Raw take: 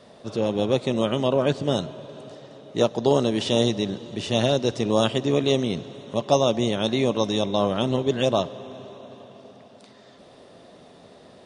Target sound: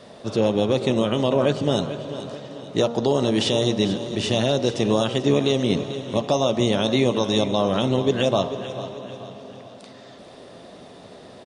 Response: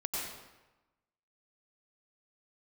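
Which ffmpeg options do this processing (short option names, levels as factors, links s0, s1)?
-filter_complex "[0:a]bandreject=f=78.3:t=h:w=4,bandreject=f=156.6:t=h:w=4,bandreject=f=234.9:t=h:w=4,bandreject=f=313.2:t=h:w=4,bandreject=f=391.5:t=h:w=4,bandreject=f=469.8:t=h:w=4,bandreject=f=548.1:t=h:w=4,bandreject=f=626.4:t=h:w=4,bandreject=f=704.7:t=h:w=4,bandreject=f=783:t=h:w=4,bandreject=f=861.3:t=h:w=4,bandreject=f=939.6:t=h:w=4,bandreject=f=1017.9:t=h:w=4,bandreject=f=1096.2:t=h:w=4,bandreject=f=1174.5:t=h:w=4,bandreject=f=1252.8:t=h:w=4,bandreject=f=1331.1:t=h:w=4,bandreject=f=1409.4:t=h:w=4,alimiter=limit=0.2:level=0:latency=1:release=179,asplit=2[s0][s1];[s1]aecho=0:1:441|882|1323|1764:0.224|0.094|0.0395|0.0166[s2];[s0][s2]amix=inputs=2:normalize=0,volume=1.88"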